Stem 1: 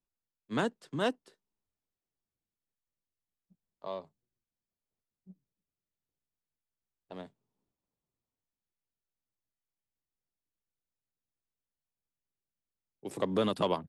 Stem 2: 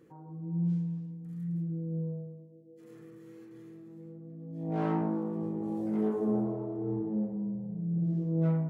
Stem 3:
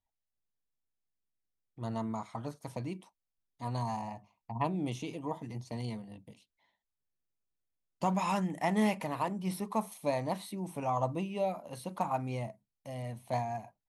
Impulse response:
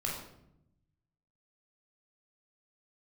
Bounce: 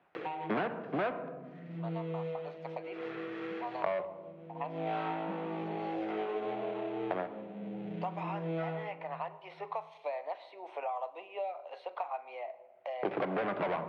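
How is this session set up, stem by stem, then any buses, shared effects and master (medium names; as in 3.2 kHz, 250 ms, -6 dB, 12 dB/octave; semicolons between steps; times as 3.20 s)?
+2.0 dB, 0.00 s, send -10.5 dB, Chebyshev low-pass 1.7 kHz, order 2; waveshaping leveller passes 3
-2.5 dB, 0.15 s, send -7.5 dB, median filter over 25 samples; tilt EQ +4.5 dB/octave
-16.5 dB, 0.00 s, send -15 dB, steep high-pass 420 Hz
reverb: on, RT60 0.80 s, pre-delay 16 ms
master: hard clipper -21 dBFS, distortion -10 dB; cabinet simulation 230–3200 Hz, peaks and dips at 240 Hz -7 dB, 730 Hz +6 dB, 1.5 kHz +3 dB, 2.3 kHz +3 dB; three bands compressed up and down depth 100%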